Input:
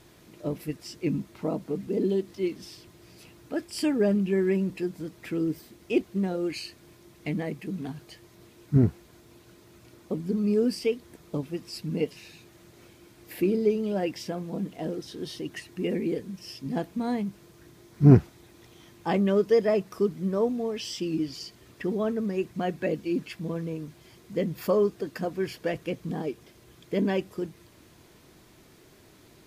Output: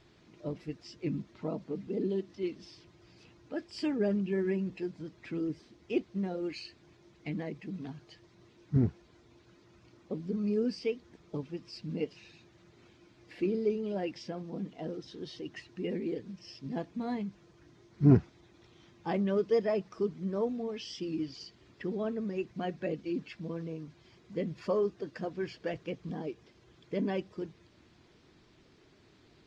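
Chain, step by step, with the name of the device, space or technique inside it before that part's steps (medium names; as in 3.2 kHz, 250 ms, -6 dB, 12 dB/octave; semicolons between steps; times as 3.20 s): clip after many re-uploads (low-pass 6 kHz 24 dB/octave; coarse spectral quantiser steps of 15 dB); trim -6 dB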